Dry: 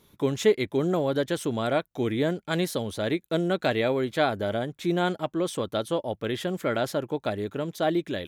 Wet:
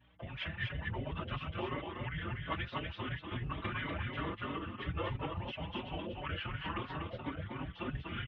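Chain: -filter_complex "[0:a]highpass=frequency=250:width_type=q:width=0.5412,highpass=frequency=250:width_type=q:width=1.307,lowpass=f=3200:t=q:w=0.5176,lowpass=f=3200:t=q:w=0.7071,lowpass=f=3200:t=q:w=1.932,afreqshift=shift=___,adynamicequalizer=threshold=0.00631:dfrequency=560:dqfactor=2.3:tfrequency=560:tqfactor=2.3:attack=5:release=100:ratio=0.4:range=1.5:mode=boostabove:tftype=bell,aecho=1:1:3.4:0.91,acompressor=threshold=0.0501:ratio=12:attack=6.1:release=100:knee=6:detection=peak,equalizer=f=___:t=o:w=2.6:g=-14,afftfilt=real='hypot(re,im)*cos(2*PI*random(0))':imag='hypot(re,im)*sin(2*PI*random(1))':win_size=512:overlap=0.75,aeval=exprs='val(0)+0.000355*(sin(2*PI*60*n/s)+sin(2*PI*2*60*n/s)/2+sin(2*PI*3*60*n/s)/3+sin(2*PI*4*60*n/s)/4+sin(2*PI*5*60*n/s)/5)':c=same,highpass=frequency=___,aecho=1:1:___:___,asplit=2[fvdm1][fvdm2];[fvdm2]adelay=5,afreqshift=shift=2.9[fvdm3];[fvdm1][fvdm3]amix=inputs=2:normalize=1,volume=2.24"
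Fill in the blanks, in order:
-350, 160, 81, 244, 0.631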